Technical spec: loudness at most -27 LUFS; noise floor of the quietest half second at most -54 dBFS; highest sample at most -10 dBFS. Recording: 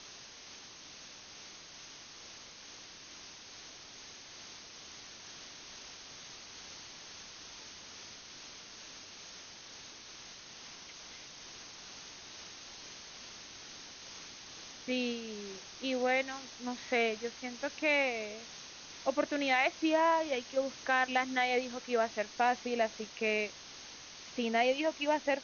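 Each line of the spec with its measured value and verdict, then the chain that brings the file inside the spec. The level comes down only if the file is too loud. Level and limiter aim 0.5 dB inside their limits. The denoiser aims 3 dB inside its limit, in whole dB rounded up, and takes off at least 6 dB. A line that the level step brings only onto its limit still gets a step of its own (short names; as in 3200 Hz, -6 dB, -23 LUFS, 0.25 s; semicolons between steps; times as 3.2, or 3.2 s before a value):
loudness -33.0 LUFS: OK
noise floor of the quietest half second -51 dBFS: fail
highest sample -16.0 dBFS: OK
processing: denoiser 6 dB, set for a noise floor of -51 dBFS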